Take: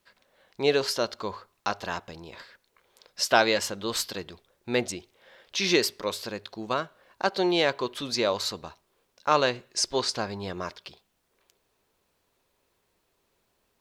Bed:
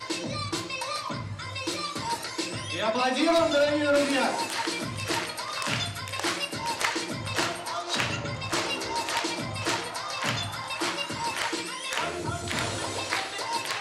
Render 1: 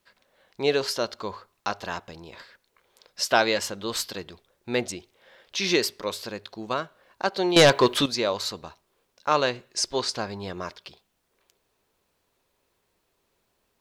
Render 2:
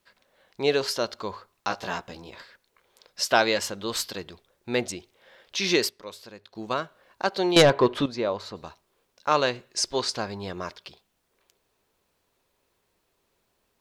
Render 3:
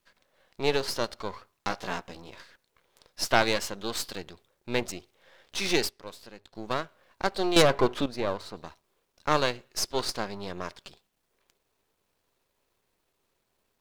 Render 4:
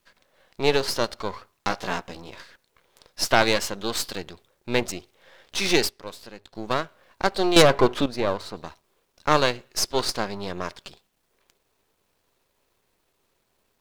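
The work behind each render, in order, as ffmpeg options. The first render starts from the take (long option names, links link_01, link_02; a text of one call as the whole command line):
ffmpeg -i in.wav -filter_complex "[0:a]asettb=1/sr,asplit=3[link_01][link_02][link_03];[link_01]atrim=end=7.564[link_04];[link_02]atrim=start=7.56:end=8.06,asetpts=PTS-STARTPTS,afade=type=in:duration=0.004:curve=qsin,afade=type=out:start_time=0.496:duration=0.004:curve=qsin,aeval=exprs='0.376*sin(PI/2*2.51*val(0)/0.376)':channel_layout=same[link_05];[link_03]atrim=start=8.056[link_06];[link_04][link_05]acrossfade=duration=0.004:curve1=hsin:curve2=qsin[link_07];[link_07][link_06]acrossfade=duration=0.004:curve1=qsin:curve2=hsin" out.wav
ffmpeg -i in.wav -filter_complex "[0:a]asettb=1/sr,asplit=3[link_01][link_02][link_03];[link_01]atrim=end=1.694[link_04];[link_02]atrim=start=1.69:end=2.3,asetpts=PTS-STARTPTS,afade=type=in:duration=0.004:curve=qsin,afade=type=out:start_time=0.606:duration=0.004:curve=qsin,asplit=2[link_05][link_06];[link_06]adelay=16,volume=-3dB[link_07];[link_05][link_07]amix=inputs=2:normalize=0,atrim=end_sample=26901[link_08];[link_03]atrim=start=2.296[link_09];[link_04][link_08]acrossfade=duration=0.004:curve1=hsin:curve2=qsin[link_10];[link_10][link_09]acrossfade=duration=0.004:curve1=qsin:curve2=hsin,asplit=3[link_11][link_12][link_13];[link_11]afade=type=out:start_time=7.61:duration=0.02[link_14];[link_12]lowpass=frequency=1200:poles=1,afade=type=in:start_time=7.61:duration=0.02,afade=type=out:start_time=8.55:duration=0.02[link_15];[link_13]afade=type=in:start_time=8.55:duration=0.02[link_16];[link_14][link_15][link_16]amix=inputs=3:normalize=0,asplit=3[link_17][link_18][link_19];[link_17]atrim=end=5.892[link_20];[link_18]atrim=start=5.888:end=6.552,asetpts=PTS-STARTPTS,volume=-10dB[link_21];[link_19]atrim=start=6.548[link_22];[link_20][link_21]acrossfade=duration=0.004:curve1=hsin:curve2=hsin[link_23];[link_23][link_22]acrossfade=duration=0.004:curve1=hsin:curve2=hsin" out.wav
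ffmpeg -i in.wav -af "aeval=exprs='if(lt(val(0),0),0.251*val(0),val(0))':channel_layout=same" out.wav
ffmpeg -i in.wav -af "volume=5dB,alimiter=limit=-1dB:level=0:latency=1" out.wav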